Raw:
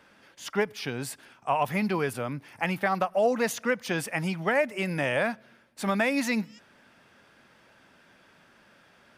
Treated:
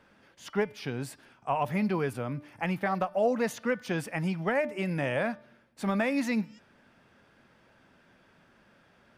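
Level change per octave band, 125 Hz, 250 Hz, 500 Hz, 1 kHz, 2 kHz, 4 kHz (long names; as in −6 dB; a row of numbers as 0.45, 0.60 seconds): +0.5, −0.5, −2.5, −3.0, −5.0, −6.5 decibels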